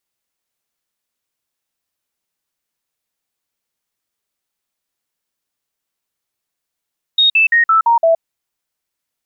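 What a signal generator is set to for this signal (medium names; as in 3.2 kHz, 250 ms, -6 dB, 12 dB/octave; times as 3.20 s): stepped sine 3.73 kHz down, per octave 2, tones 6, 0.12 s, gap 0.05 s -8 dBFS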